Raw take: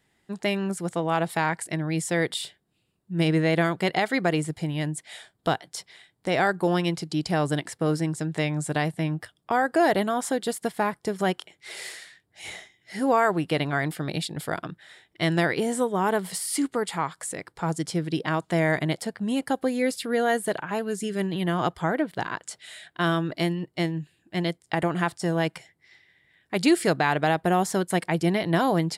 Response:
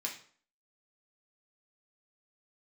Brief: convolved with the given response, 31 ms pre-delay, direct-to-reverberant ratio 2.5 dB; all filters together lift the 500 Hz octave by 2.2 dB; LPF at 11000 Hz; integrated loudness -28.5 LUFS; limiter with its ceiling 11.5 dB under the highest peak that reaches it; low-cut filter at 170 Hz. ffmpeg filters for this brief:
-filter_complex "[0:a]highpass=170,lowpass=11k,equalizer=f=500:t=o:g=3,alimiter=limit=-18dB:level=0:latency=1,asplit=2[a][b];[1:a]atrim=start_sample=2205,adelay=31[c];[b][c]afir=irnorm=-1:irlink=0,volume=-4dB[d];[a][d]amix=inputs=2:normalize=0,volume=0.5dB"

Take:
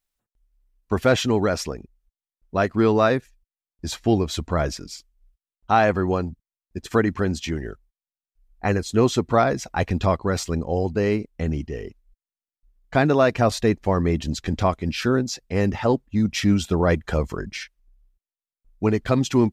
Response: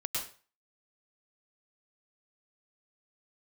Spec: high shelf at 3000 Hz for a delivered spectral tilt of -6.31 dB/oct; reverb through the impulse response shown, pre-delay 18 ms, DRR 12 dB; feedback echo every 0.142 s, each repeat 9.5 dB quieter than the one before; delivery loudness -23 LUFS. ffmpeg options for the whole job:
-filter_complex "[0:a]highshelf=f=3k:g=-6,aecho=1:1:142|284|426|568:0.335|0.111|0.0365|0.012,asplit=2[a][b];[1:a]atrim=start_sample=2205,adelay=18[c];[b][c]afir=irnorm=-1:irlink=0,volume=-16dB[d];[a][d]amix=inputs=2:normalize=0,volume=-1dB"

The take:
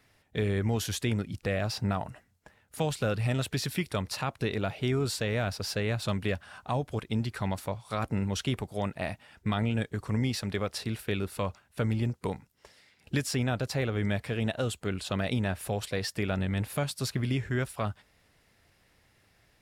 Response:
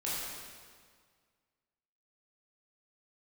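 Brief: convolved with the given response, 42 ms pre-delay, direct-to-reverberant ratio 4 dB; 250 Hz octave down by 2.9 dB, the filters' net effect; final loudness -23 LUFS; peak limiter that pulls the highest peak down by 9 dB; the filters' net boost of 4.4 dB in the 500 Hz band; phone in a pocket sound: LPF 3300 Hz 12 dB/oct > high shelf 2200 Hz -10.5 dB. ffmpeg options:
-filter_complex "[0:a]equalizer=f=250:t=o:g=-5.5,equalizer=f=500:t=o:g=7.5,alimiter=limit=-22.5dB:level=0:latency=1,asplit=2[a][b];[1:a]atrim=start_sample=2205,adelay=42[c];[b][c]afir=irnorm=-1:irlink=0,volume=-9dB[d];[a][d]amix=inputs=2:normalize=0,lowpass=3.3k,highshelf=f=2.2k:g=-10.5,volume=10.5dB"

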